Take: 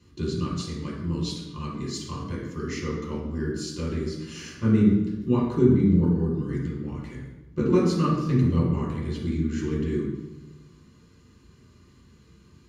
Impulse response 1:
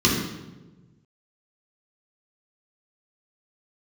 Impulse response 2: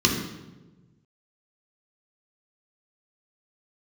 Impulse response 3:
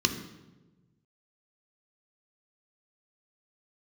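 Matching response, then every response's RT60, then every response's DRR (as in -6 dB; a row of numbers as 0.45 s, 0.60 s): 1; 1.2 s, 1.2 s, 1.2 s; -5.5 dB, -1.0 dB, 5.5 dB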